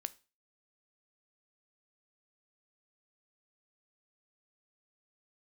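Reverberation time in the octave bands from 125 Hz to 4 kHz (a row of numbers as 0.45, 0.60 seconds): 0.35, 0.35, 0.30, 0.35, 0.30, 0.35 seconds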